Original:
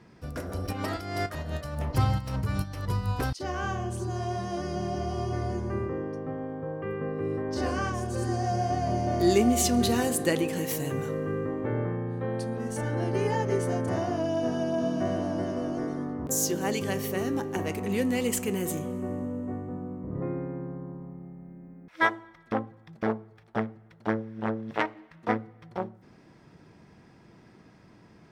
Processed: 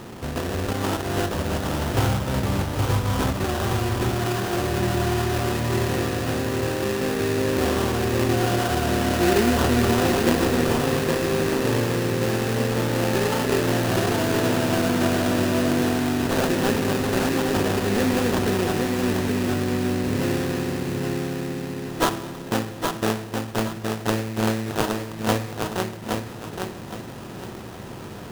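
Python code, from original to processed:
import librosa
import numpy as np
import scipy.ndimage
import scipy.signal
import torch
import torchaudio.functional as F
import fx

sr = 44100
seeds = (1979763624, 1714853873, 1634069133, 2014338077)

y = fx.bin_compress(x, sr, power=0.6)
y = fx.sample_hold(y, sr, seeds[0], rate_hz=2200.0, jitter_pct=20)
y = fx.echo_feedback(y, sr, ms=818, feedback_pct=30, wet_db=-4.5)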